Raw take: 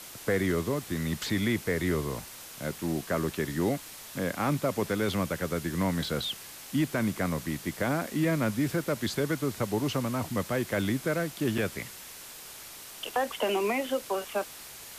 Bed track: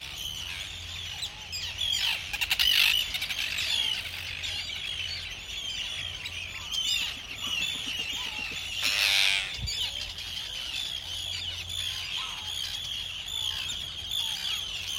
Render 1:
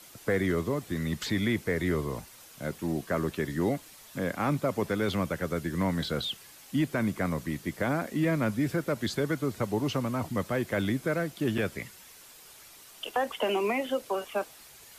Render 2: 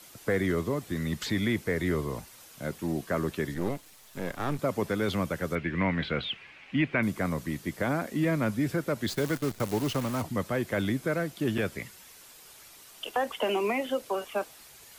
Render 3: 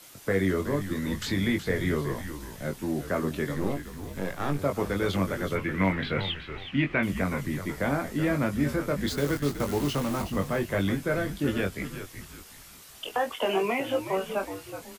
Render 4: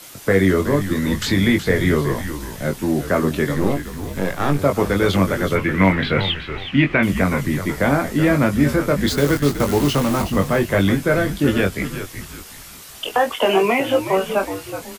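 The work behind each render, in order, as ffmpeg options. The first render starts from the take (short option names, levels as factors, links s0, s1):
-af "afftdn=nr=8:nf=-45"
-filter_complex "[0:a]asettb=1/sr,asplit=3[s0][s1][s2];[s0]atrim=end=3.544[s3];[s1]atrim=start=3.54:end=4.59,asetpts=PTS-STARTPTS,afade=t=in:d=0.004:c=qsin,afade=t=out:st=1.046:d=0.004:c=qsin,aeval=exprs='if(lt(val(0),0),0.251*val(0),val(0))':c=same[s4];[s2]atrim=start=4.586[s5];[s3][s4]acrossfade=d=0.004:c1=hsin:c2=qsin[s6];[s6][s5]acrossfade=d=0.004:c1=qsin:c2=hsin,asettb=1/sr,asplit=3[s7][s8][s9];[s7]atrim=end=5.554[s10];[s8]atrim=start=5.55:end=7.03,asetpts=PTS-STARTPTS,afade=t=in:d=0.004:c=qsin,afade=t=out:st=1.476:d=0.004:c=qsin,lowpass=f=2400:t=q:w=4[s11];[s9]atrim=start=7.026[s12];[s10][s11]acrossfade=d=0.004:c1=hsin:c2=qsin[s13];[s13][s12]acrossfade=d=0.004:c1=qsin:c2=hsin,asettb=1/sr,asplit=3[s14][s15][s16];[s14]atrim=end=9.084[s17];[s15]atrim=start=9.08:end=10.22,asetpts=PTS-STARTPTS,afade=t=in:d=0.004:c=qsin,afade=t=out:st=1.136:d=0.004:c=qsin,acrusher=bits=7:dc=4:mix=0:aa=0.000001[s18];[s16]atrim=start=10.216[s19];[s17][s18]acrossfade=d=0.004:c1=hsin:c2=qsin[s20];[s20][s19]acrossfade=d=0.004:c1=qsin:c2=hsin"
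-filter_complex "[0:a]asplit=2[s0][s1];[s1]adelay=21,volume=0.562[s2];[s0][s2]amix=inputs=2:normalize=0,asplit=5[s3][s4][s5][s6][s7];[s4]adelay=372,afreqshift=-87,volume=0.316[s8];[s5]adelay=744,afreqshift=-174,volume=0.111[s9];[s6]adelay=1116,afreqshift=-261,volume=0.0389[s10];[s7]adelay=1488,afreqshift=-348,volume=0.0135[s11];[s3][s8][s9][s10][s11]amix=inputs=5:normalize=0"
-af "volume=3.16,alimiter=limit=0.708:level=0:latency=1"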